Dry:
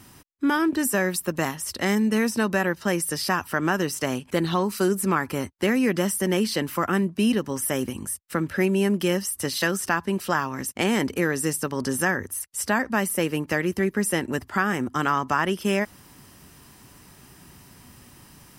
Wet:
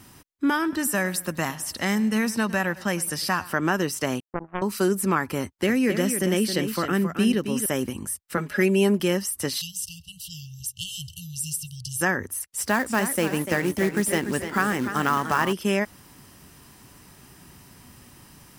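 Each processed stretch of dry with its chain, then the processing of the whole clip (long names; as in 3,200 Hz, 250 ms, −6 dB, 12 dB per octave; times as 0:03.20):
0:00.51–0:03.52: parametric band 400 Hz −6 dB 0.91 octaves + feedback echo with a swinging delay time 105 ms, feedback 48%, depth 62 cents, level −19 dB
0:04.20–0:04.62: Chebyshev low-pass filter 1,400 Hz, order 8 + power curve on the samples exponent 3
0:05.42–0:07.66: dynamic equaliser 950 Hz, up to −6 dB, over −42 dBFS, Q 1.9 + single-tap delay 269 ms −8 dB
0:08.37–0:09.00: low-shelf EQ 190 Hz −9.5 dB + comb filter 4.8 ms, depth 91%
0:09.61–0:12.01: linear-phase brick-wall band-stop 160–2,700 Hz + single-tap delay 133 ms −22.5 dB
0:12.57–0:15.53: floating-point word with a short mantissa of 2 bits + feedback echo with a swinging delay time 295 ms, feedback 51%, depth 104 cents, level −9.5 dB
whole clip: no processing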